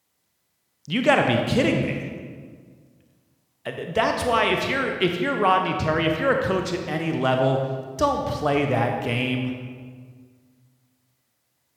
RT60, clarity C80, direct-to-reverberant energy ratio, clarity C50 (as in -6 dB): 1.8 s, 5.5 dB, 3.0 dB, 4.0 dB